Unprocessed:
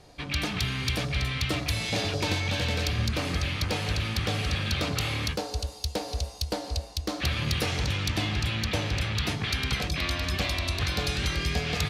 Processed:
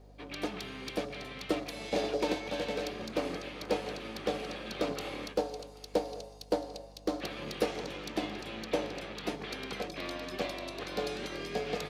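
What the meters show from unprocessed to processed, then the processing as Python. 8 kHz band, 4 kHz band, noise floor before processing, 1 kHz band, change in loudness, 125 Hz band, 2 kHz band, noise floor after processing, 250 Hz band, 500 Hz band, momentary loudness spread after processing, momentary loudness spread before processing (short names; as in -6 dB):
-12.0 dB, -11.5 dB, -41 dBFS, -4.0 dB, -8.0 dB, -20.0 dB, -10.5 dB, -51 dBFS, -3.5 dB, +2.0 dB, 6 LU, 5 LU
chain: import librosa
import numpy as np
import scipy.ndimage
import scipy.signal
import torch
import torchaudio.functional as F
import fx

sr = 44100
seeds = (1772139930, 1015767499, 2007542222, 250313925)

p1 = scipy.signal.sosfilt(scipy.signal.butter(4, 180.0, 'highpass', fs=sr, output='sos'), x)
p2 = fx.peak_eq(p1, sr, hz=470.0, db=13.5, octaves=2.1)
p3 = fx.dmg_crackle(p2, sr, seeds[0], per_s=340.0, level_db=-50.0)
p4 = fx.add_hum(p3, sr, base_hz=50, snr_db=14)
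p5 = p4 + fx.echo_single(p4, sr, ms=785, db=-17.0, dry=0)
p6 = fx.upward_expand(p5, sr, threshold_db=-32.0, expansion=1.5)
y = p6 * 10.0 ** (-8.0 / 20.0)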